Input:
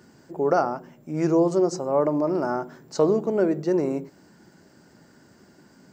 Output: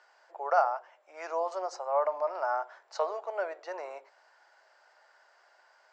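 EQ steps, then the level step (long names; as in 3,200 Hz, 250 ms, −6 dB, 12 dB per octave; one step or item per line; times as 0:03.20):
Butterworth high-pass 630 Hz 36 dB per octave
high-frequency loss of the air 120 metres
high-shelf EQ 5,000 Hz −5.5 dB
0.0 dB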